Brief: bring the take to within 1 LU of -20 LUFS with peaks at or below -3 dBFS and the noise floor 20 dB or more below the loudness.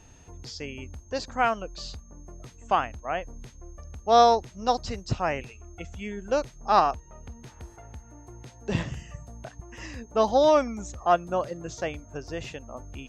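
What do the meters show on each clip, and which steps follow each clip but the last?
steady tone 6.4 kHz; tone level -58 dBFS; loudness -26.5 LUFS; peak level -6.5 dBFS; loudness target -20.0 LUFS
-> band-stop 6.4 kHz, Q 30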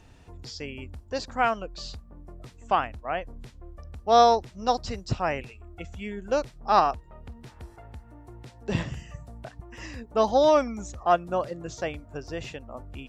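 steady tone not found; loudness -26.5 LUFS; peak level -6.5 dBFS; loudness target -20.0 LUFS
-> trim +6.5 dB; peak limiter -3 dBFS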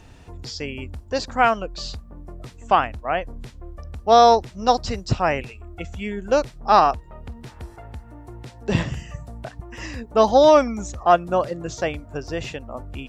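loudness -20.5 LUFS; peak level -3.0 dBFS; noise floor -45 dBFS

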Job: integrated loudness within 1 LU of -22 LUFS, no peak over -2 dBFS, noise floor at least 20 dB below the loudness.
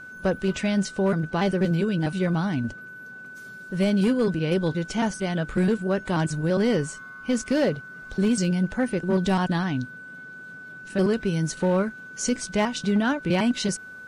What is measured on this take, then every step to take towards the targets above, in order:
clipped samples 1.1%; clipping level -16.0 dBFS; steady tone 1.5 kHz; tone level -39 dBFS; loudness -25.0 LUFS; peak level -16.0 dBFS; loudness target -22.0 LUFS
-> clip repair -16 dBFS; band-stop 1.5 kHz, Q 30; trim +3 dB

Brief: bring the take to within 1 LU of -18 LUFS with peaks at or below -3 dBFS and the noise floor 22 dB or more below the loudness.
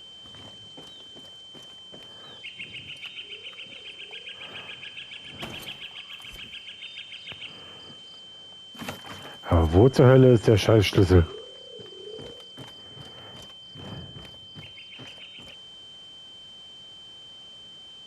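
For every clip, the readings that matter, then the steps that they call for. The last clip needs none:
steady tone 3.1 kHz; tone level -43 dBFS; loudness -23.0 LUFS; peak level -6.5 dBFS; loudness target -18.0 LUFS
-> band-stop 3.1 kHz, Q 30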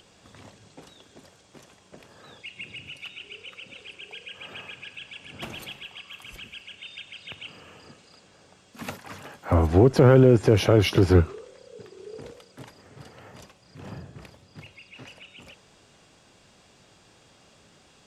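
steady tone not found; loudness -19.5 LUFS; peak level -6.5 dBFS; loudness target -18.0 LUFS
-> trim +1.5 dB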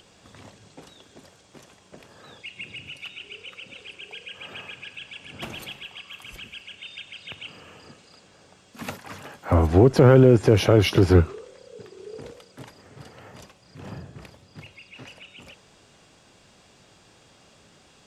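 loudness -18.0 LUFS; peak level -5.0 dBFS; noise floor -56 dBFS

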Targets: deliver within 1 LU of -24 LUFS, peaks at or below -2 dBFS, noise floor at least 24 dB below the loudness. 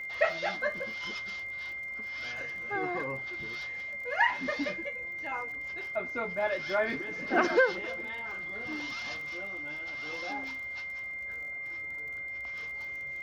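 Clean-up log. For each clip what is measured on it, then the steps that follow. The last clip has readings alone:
tick rate 35 per s; steady tone 2.1 kHz; tone level -36 dBFS; loudness -33.0 LUFS; peak level -11.5 dBFS; loudness target -24.0 LUFS
-> de-click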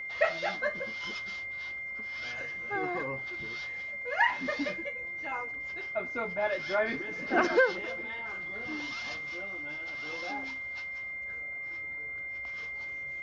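tick rate 0 per s; steady tone 2.1 kHz; tone level -36 dBFS
-> band-stop 2.1 kHz, Q 30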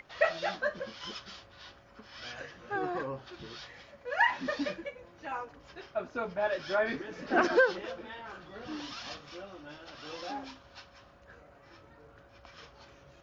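steady tone not found; loudness -33.5 LUFS; peak level -12.5 dBFS; loudness target -24.0 LUFS
-> trim +9.5 dB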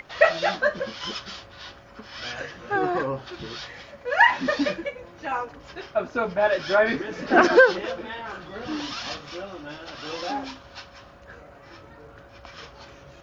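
loudness -24.0 LUFS; peak level -3.0 dBFS; noise floor -48 dBFS

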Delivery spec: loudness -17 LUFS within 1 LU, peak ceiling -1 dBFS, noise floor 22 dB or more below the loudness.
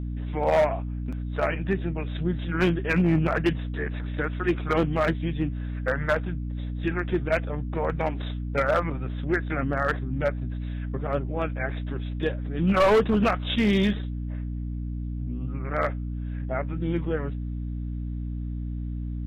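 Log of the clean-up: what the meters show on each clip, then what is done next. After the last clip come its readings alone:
clipped samples 1.0%; clipping level -15.5 dBFS; hum 60 Hz; highest harmonic 300 Hz; hum level -29 dBFS; loudness -27.0 LUFS; peak level -15.5 dBFS; loudness target -17.0 LUFS
-> clip repair -15.5 dBFS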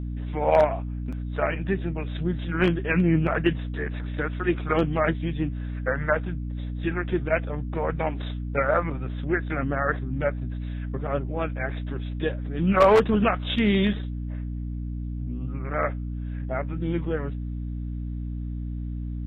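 clipped samples 0.0%; hum 60 Hz; highest harmonic 300 Hz; hum level -28 dBFS
-> de-hum 60 Hz, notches 5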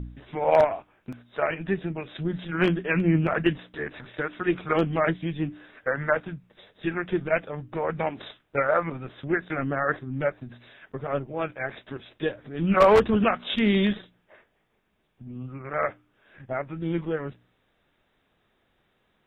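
hum not found; loudness -26.5 LUFS; peak level -5.5 dBFS; loudness target -17.0 LUFS
-> trim +9.5 dB; peak limiter -1 dBFS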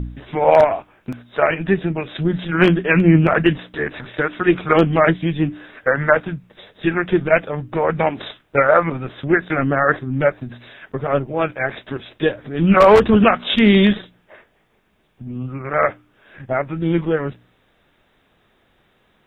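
loudness -17.5 LUFS; peak level -1.0 dBFS; noise floor -61 dBFS

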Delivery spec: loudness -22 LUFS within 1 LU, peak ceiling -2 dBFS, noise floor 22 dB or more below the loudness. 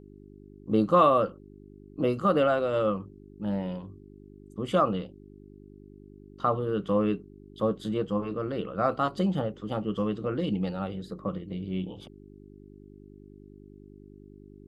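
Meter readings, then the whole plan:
hum 50 Hz; highest harmonic 400 Hz; hum level -46 dBFS; loudness -28.5 LUFS; peak level -10.0 dBFS; loudness target -22.0 LUFS
-> de-hum 50 Hz, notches 8; trim +6.5 dB

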